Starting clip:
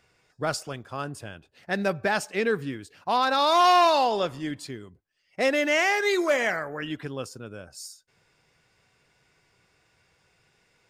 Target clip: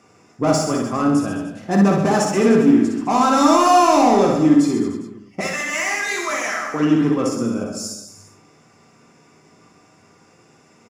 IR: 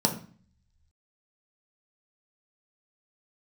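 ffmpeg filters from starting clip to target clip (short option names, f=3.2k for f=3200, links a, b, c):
-filter_complex "[0:a]asettb=1/sr,asplit=3[a][b][c];[a]atrim=end=5.404[d];[b]atrim=start=5.4:end=6.74,asetpts=PTS-STARTPTS,afade=t=in:d=0.004:c=qsin,afade=t=out:st=1.336:d=0.004:c=qsin,highpass=1.4k[e];[c]atrim=start=6.736[f];[d][e]acrossfade=d=0.004:c1=hsin:c2=qsin[g];[g][f]acrossfade=d=0.004:c1=qsin:c2=hsin,asoftclip=type=tanh:threshold=-28dB,aecho=1:1:60|129|208.4|299.6|404.5:0.631|0.398|0.251|0.158|0.1[h];[1:a]atrim=start_sample=2205,asetrate=57330,aresample=44100[i];[h][i]afir=irnorm=-1:irlink=0,volume=1dB"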